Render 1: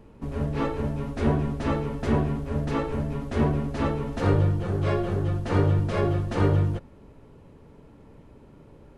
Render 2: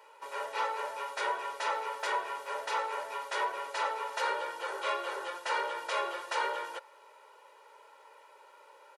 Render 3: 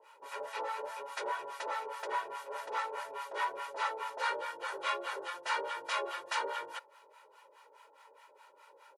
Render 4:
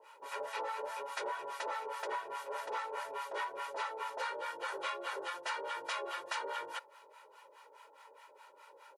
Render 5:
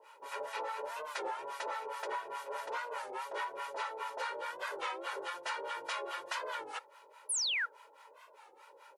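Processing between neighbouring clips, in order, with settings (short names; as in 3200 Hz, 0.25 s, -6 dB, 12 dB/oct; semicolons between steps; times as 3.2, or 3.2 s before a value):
HPF 720 Hz 24 dB/oct; comb 2.1 ms, depth 90%; compressor 2:1, threshold -35 dBFS, peak gain reduction 5.5 dB; gain +3.5 dB
harmonic tremolo 4.8 Hz, depth 100%, crossover 750 Hz; gain +2 dB
compressor 10:1, threshold -36 dBFS, peak gain reduction 8.5 dB; gain +1.5 dB
painted sound fall, 7.29–7.66, 1300–11000 Hz -33 dBFS; on a send at -23.5 dB: reverb, pre-delay 3 ms; on the sum: record warp 33 1/3 rpm, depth 160 cents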